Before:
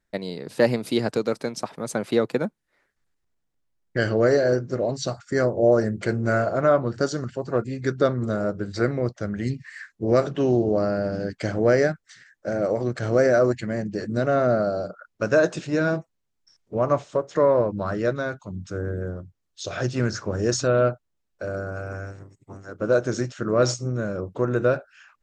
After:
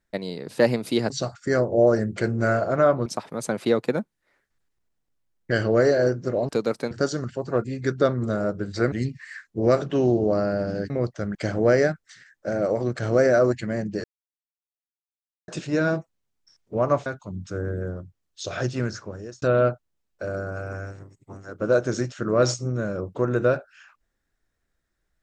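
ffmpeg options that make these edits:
-filter_complex "[0:a]asplit=12[a][b][c][d][e][f][g][h][i][j][k][l];[a]atrim=end=1.102[m];[b]atrim=start=4.948:end=6.912[n];[c]atrim=start=1.518:end=4.952[o];[d]atrim=start=1.098:end=1.522[p];[e]atrim=start=6.908:end=8.922[q];[f]atrim=start=9.368:end=11.352[r];[g]atrim=start=8.918:end=9.372[s];[h]atrim=start=11.348:end=14.04,asetpts=PTS-STARTPTS,afade=t=out:st=2.688:d=0.004:c=hsin[t];[i]atrim=start=14.04:end=15.48,asetpts=PTS-STARTPTS,volume=0[u];[j]atrim=start=15.48:end=17.062,asetpts=PTS-STARTPTS,afade=t=in:d=0.004:c=hsin[v];[k]atrim=start=18.258:end=20.62,asetpts=PTS-STARTPTS,afade=t=out:st=1.532:d=0.83[w];[l]atrim=start=20.62,asetpts=PTS-STARTPTS,afade=t=in:d=0.004:c=hsin[x];[m][n]acrossfade=d=0.004:c1=hsin:c2=hsin[y];[y][o]acrossfade=d=0.004:c1=hsin:c2=hsin[z];[z][p]acrossfade=d=0.004:c1=hsin:c2=hsin[aa];[aa][q]acrossfade=d=0.004:c1=hsin:c2=hsin[ab];[ab][r]acrossfade=d=0.004:c1=hsin:c2=hsin[ac];[ac][s]acrossfade=d=0.004:c1=hsin:c2=hsin[ad];[t][u][v]concat=n=3:v=0:a=1[ae];[ad][ae]acrossfade=d=0.004:c1=hsin:c2=hsin[af];[w][x]concat=n=2:v=0:a=1[ag];[af][ag]acrossfade=d=0.004:c1=hsin:c2=hsin"

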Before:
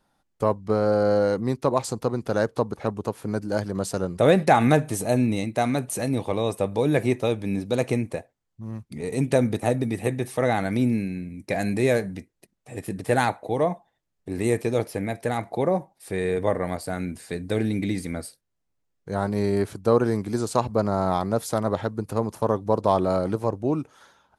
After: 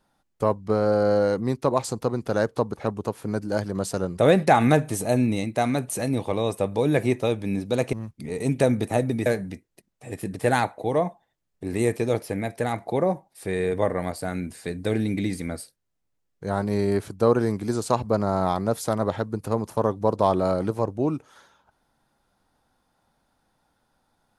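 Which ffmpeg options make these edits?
-filter_complex "[0:a]asplit=3[a][b][c];[a]atrim=end=7.932[d];[b]atrim=start=8.648:end=9.982[e];[c]atrim=start=11.908[f];[d][e]acrossfade=d=0.004:c1=hsin:c2=hsin[g];[g][f]acrossfade=d=0.004:c1=hsin:c2=hsin"

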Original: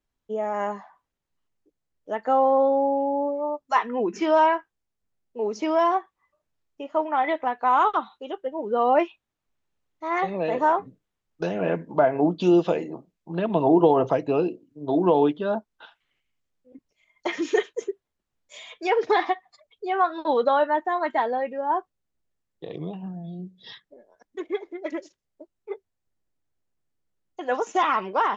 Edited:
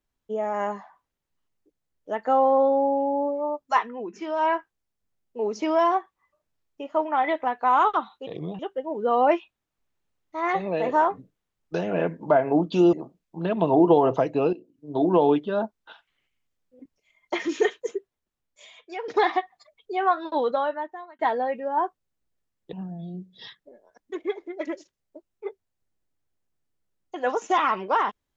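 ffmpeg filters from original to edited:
-filter_complex "[0:a]asplit=10[a][b][c][d][e][f][g][h][i][j];[a]atrim=end=3.94,asetpts=PTS-STARTPTS,afade=t=out:st=3.76:d=0.18:silence=0.354813[k];[b]atrim=start=3.94:end=4.37,asetpts=PTS-STARTPTS,volume=-9dB[l];[c]atrim=start=4.37:end=8.272,asetpts=PTS-STARTPTS,afade=t=in:d=0.18:silence=0.354813[m];[d]atrim=start=22.658:end=22.982[n];[e]atrim=start=8.268:end=12.612[o];[f]atrim=start=12.858:end=14.46,asetpts=PTS-STARTPTS,afade=t=out:st=1.598:d=0.004:c=hsin:silence=0.188365[p];[g]atrim=start=14.46:end=19.01,asetpts=PTS-STARTPTS,afade=t=in:d=0.41:silence=0.188365,afade=t=out:st=3.32:d=1.23:silence=0.211349[q];[h]atrim=start=19.01:end=21.12,asetpts=PTS-STARTPTS,afade=t=in:d=0.004:c=hsin:silence=0.211349,afade=t=out:st=1.11:d=1[r];[i]atrim=start=21.12:end=22.662,asetpts=PTS-STARTPTS,afade=t=in:d=0.004:c=hsin[s];[j]atrim=start=22.978[t];[k][l][m]concat=n=3:v=0:a=1[u];[u][n]acrossfade=d=0.004:c1=hsin:c2=hsin[v];[v][o]acrossfade=d=0.004:c1=hsin:c2=hsin[w];[p][q][r][s]concat=n=4:v=0:a=1[x];[w][x]acrossfade=d=0.004:c1=hsin:c2=hsin[y];[y][t]acrossfade=d=0.004:c1=hsin:c2=hsin"

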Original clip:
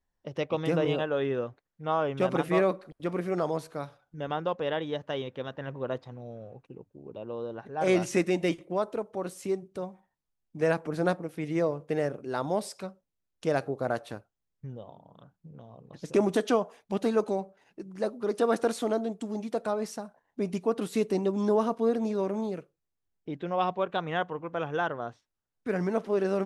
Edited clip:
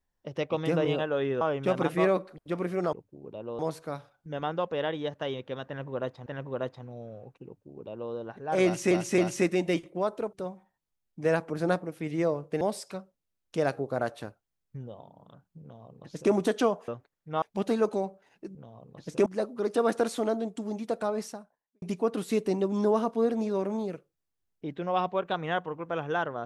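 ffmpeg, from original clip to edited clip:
-filter_complex "[0:a]asplit=14[a][b][c][d][e][f][g][h][i][j][k][l][m][n];[a]atrim=end=1.412[o];[b]atrim=start=1.948:end=3.472[p];[c]atrim=start=6.748:end=7.412[q];[d]atrim=start=3.468:end=6.142[r];[e]atrim=start=5.548:end=8.202[s];[f]atrim=start=7.928:end=8.202[t];[g]atrim=start=7.928:end=9.082[u];[h]atrim=start=9.698:end=11.982[v];[i]atrim=start=12.498:end=16.772[w];[j]atrim=start=1.408:end=1.952[x];[k]atrim=start=16.768:end=17.902[y];[l]atrim=start=15.508:end=16.222[z];[m]atrim=start=17.898:end=20.46,asetpts=PTS-STARTPTS,afade=t=out:st=1.992:d=0.57:c=qua[aa];[n]atrim=start=20.46,asetpts=PTS-STARTPTS,afade=t=in:d=0.004:c=hsin[ab];[o][p]acrossfade=d=0.004:c1=hsin:c2=hsin[ac];[ac][q]acrossfade=d=0.004:c1=hsin:c2=hsin[ad];[ad][r]acrossfade=d=0.004:c1=hsin:c2=hsin[ae];[ae][s]acrossfade=d=0.004:c1=hsin:c2=hsin[af];[af][t]acrossfade=d=0.004:c1=hsin:c2=hsin[ag];[ag][u]acrossfade=d=0.004:c1=hsin:c2=hsin[ah];[ah][v]acrossfade=d=0.004:c1=hsin:c2=hsin[ai];[ai][w]acrossfade=d=0.004:c1=hsin:c2=hsin[aj];[aj][x]acrossfade=d=0.004:c1=hsin:c2=hsin[ak];[ak][y]acrossfade=d=0.004:c1=hsin:c2=hsin[al];[al][z]acrossfade=d=0.004:c1=hsin:c2=hsin[am];[aa][ab]concat=n=2:v=0:a=1[an];[am][an]acrossfade=d=0.004:c1=hsin:c2=hsin"

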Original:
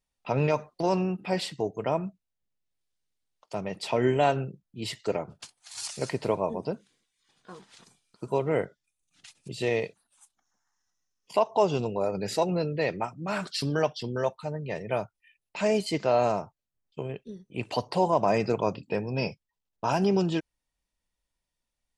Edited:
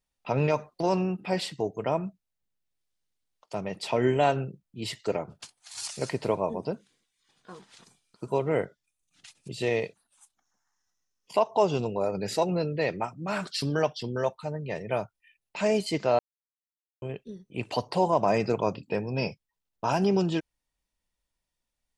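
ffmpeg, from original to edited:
-filter_complex "[0:a]asplit=3[a][b][c];[a]atrim=end=16.19,asetpts=PTS-STARTPTS,afade=t=out:st=16.186:d=0.004:c=hsin[d];[b]atrim=start=16.19:end=17.02,asetpts=PTS-STARTPTS,volume=0[e];[c]atrim=start=17.02,asetpts=PTS-STARTPTS,afade=t=in:d=0.004:c=hsin[f];[d][e][f]concat=n=3:v=0:a=1"

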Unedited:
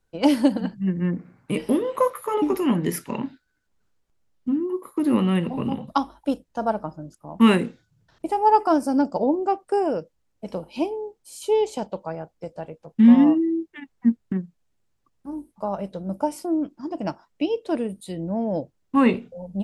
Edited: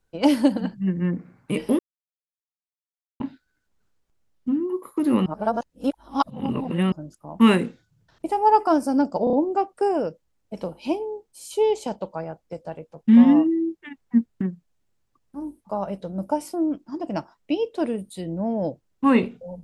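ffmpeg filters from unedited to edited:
-filter_complex "[0:a]asplit=8[a][b][c][d][e][f][g][h];[a]atrim=end=1.79,asetpts=PTS-STARTPTS,afade=t=out:st=1.786:d=0.004:c=hsin[i];[b]atrim=start=1.79:end=3.2,asetpts=PTS-STARTPTS,volume=0[j];[c]atrim=start=3.2:end=5.262,asetpts=PTS-STARTPTS,afade=t=in:d=0.004:c=hsin[k];[d]atrim=start=5.258:end=6.922,asetpts=PTS-STARTPTS,areverse[l];[e]atrim=start=6.918:end=9.272[m];[f]atrim=start=9.238:end=9.272[n];[g]atrim=start=9.238:end=9.272[o];[h]atrim=start=9.238[p];[i][j][k]concat=n=3:v=0:a=1[q];[q][l]acrossfade=d=0.004:c1=hsin:c2=hsin[r];[r][m]acrossfade=d=0.004:c1=hsin:c2=hsin[s];[s][n]acrossfade=d=0.004:c1=hsin:c2=hsin[t];[t][o]acrossfade=d=0.004:c1=hsin:c2=hsin[u];[u][p]acrossfade=d=0.004:c1=hsin:c2=hsin"

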